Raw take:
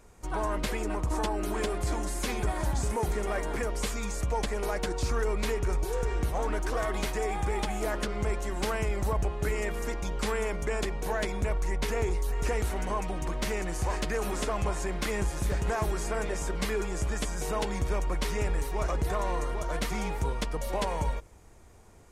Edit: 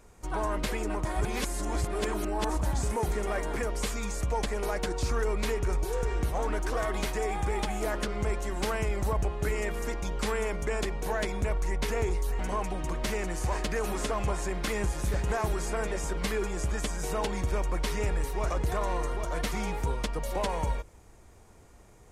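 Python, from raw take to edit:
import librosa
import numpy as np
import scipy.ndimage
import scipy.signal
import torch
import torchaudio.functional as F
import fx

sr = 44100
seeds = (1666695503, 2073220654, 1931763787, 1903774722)

y = fx.edit(x, sr, fx.reverse_span(start_s=1.05, length_s=1.58),
    fx.cut(start_s=12.39, length_s=0.38), tone=tone)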